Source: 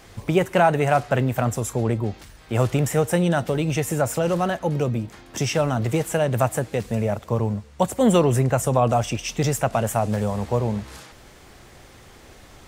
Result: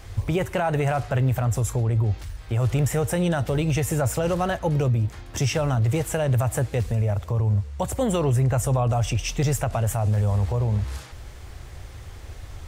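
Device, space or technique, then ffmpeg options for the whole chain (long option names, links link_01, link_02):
car stereo with a boomy subwoofer: -af "lowshelf=frequency=130:width_type=q:width=1.5:gain=11.5,alimiter=limit=-15dB:level=0:latency=1:release=68"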